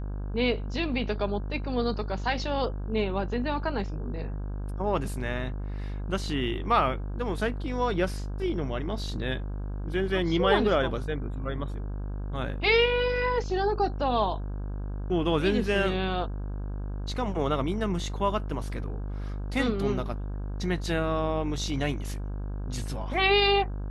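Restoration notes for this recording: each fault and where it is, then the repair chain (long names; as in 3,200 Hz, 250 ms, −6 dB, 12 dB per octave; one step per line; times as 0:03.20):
mains buzz 50 Hz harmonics 33 −33 dBFS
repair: hum removal 50 Hz, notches 33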